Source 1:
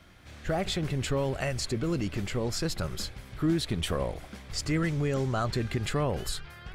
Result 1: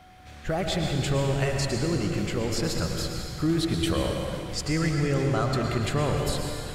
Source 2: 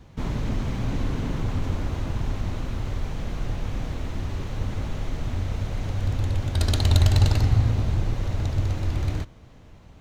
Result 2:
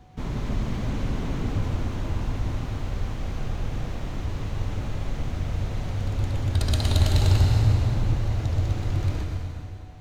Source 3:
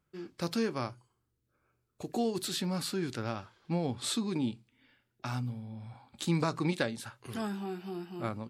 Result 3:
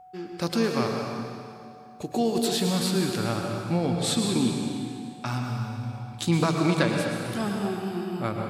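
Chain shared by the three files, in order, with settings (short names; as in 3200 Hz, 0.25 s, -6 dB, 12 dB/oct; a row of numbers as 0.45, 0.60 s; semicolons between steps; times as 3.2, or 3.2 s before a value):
plate-style reverb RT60 2.4 s, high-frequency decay 0.9×, pre-delay 95 ms, DRR 1.5 dB; whine 740 Hz -53 dBFS; match loudness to -27 LUFS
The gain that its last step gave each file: +1.5, -3.0, +6.0 dB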